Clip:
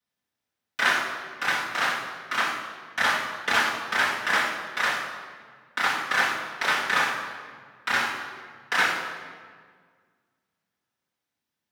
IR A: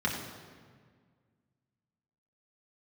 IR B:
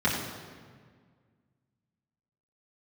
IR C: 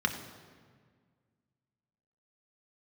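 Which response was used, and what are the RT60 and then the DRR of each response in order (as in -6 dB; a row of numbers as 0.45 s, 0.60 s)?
B; 1.7 s, 1.7 s, 1.7 s; -4.0 dB, -8.5 dB, 3.5 dB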